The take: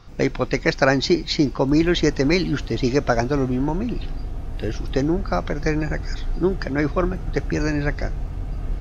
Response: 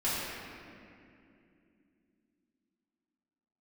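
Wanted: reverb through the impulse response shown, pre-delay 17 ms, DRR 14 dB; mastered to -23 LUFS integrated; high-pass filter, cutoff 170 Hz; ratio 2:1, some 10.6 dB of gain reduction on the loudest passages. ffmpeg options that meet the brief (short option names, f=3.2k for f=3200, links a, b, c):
-filter_complex "[0:a]highpass=170,acompressor=threshold=-33dB:ratio=2,asplit=2[a][b];[1:a]atrim=start_sample=2205,adelay=17[c];[b][c]afir=irnorm=-1:irlink=0,volume=-23.5dB[d];[a][d]amix=inputs=2:normalize=0,volume=9dB"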